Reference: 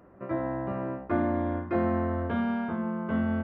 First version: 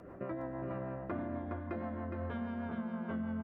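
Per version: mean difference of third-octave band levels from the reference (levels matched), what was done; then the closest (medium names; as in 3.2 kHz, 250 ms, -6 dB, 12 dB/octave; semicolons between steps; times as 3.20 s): 3.5 dB: rotary cabinet horn 6.3 Hz; hum notches 50/100/150/200/250/300/350 Hz; compression 8:1, threshold -45 dBFS, peak gain reduction 19.5 dB; delay 414 ms -5 dB; trim +7 dB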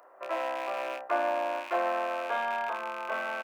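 14.5 dB: rattle on loud lows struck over -39 dBFS, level -32 dBFS; high-pass 660 Hz 24 dB/octave; peaking EQ 2.5 kHz -8 dB 2.3 oct; doubling 31 ms -8 dB; trim +9 dB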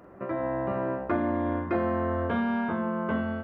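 2.0 dB: level rider gain up to 11.5 dB; bass shelf 200 Hz -5.5 dB; compression 2.5:1, threshold -37 dBFS, peak gain reduction 16 dB; on a send: flutter echo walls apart 7.5 m, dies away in 0.24 s; on the sum: trim +5 dB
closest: third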